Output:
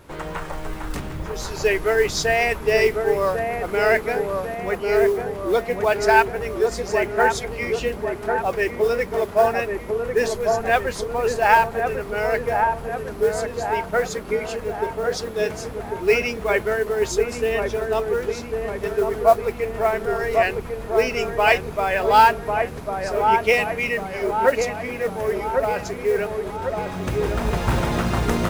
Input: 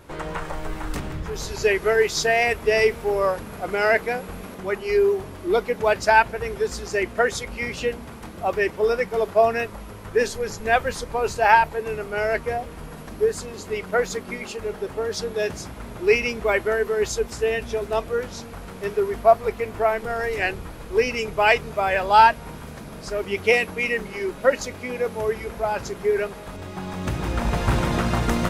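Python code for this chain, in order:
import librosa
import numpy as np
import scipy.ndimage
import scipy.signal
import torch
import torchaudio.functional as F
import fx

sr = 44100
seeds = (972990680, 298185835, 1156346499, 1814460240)

y = fx.mod_noise(x, sr, seeds[0], snr_db=27)
y = fx.echo_wet_lowpass(y, sr, ms=1098, feedback_pct=54, hz=1400.0, wet_db=-4)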